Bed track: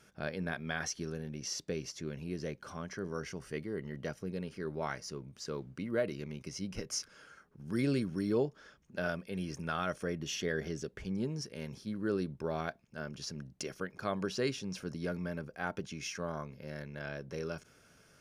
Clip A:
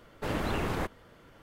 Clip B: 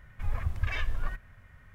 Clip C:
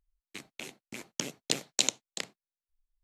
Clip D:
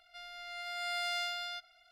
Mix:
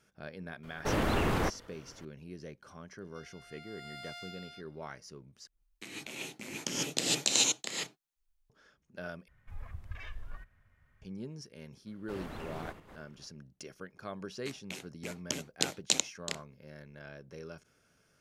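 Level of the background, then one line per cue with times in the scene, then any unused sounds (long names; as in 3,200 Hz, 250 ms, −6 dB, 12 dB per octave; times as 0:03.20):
bed track −7 dB
0:00.63: mix in A −1 dB + leveller curve on the samples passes 1
0:03.01: mix in D −11 dB
0:05.47: overwrite with C −4 dB + reverb whose tail is shaped and stops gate 170 ms rising, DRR −5.5 dB
0:09.28: overwrite with B −13 dB
0:11.86: mix in A −12.5 dB + feedback delay that plays each chunk backwards 157 ms, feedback 45%, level −10 dB
0:14.11: mix in C −1.5 dB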